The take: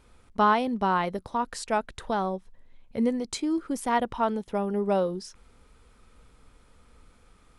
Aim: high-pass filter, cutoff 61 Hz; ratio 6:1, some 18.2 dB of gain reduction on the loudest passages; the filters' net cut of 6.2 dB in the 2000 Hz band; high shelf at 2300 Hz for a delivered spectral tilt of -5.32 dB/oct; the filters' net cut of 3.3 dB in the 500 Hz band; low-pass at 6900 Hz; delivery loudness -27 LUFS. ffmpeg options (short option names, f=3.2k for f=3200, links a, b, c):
-af "highpass=61,lowpass=6.9k,equalizer=f=500:t=o:g=-3.5,equalizer=f=2k:t=o:g=-5,highshelf=f=2.3k:g=-8,acompressor=threshold=-42dB:ratio=6,volume=18.5dB"